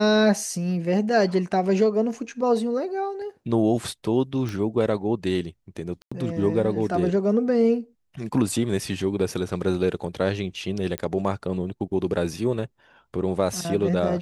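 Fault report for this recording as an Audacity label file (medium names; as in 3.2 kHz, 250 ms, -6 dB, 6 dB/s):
4.490000	4.490000	pop -18 dBFS
6.020000	6.120000	dropout 95 ms
10.980000	10.980000	pop -13 dBFS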